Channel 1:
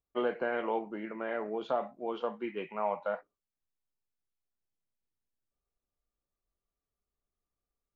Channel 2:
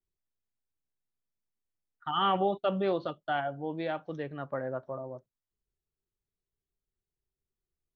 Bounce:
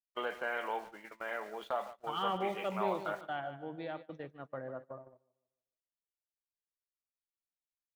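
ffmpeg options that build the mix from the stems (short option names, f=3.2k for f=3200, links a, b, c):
-filter_complex "[0:a]lowshelf=f=330:g=-11,aeval=exprs='val(0)*gte(abs(val(0)),0.00188)':c=same,equalizer=f=310:t=o:w=2.1:g=-9,volume=2dB,asplit=2[a][b];[b]volume=-15dB[c];[1:a]volume=-8dB,asplit=2[d][e];[e]volume=-11dB[f];[c][f]amix=inputs=2:normalize=0,aecho=0:1:150|300|450|600|750:1|0.39|0.152|0.0593|0.0231[g];[a][d][g]amix=inputs=3:normalize=0,agate=range=-20dB:threshold=-45dB:ratio=16:detection=peak"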